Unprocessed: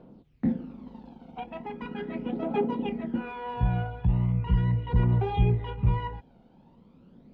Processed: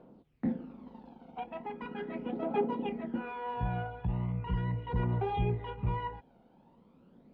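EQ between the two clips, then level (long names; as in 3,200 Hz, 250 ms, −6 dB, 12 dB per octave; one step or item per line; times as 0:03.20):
low-shelf EQ 250 Hz −10.5 dB
high-shelf EQ 2,900 Hz −9.5 dB
0.0 dB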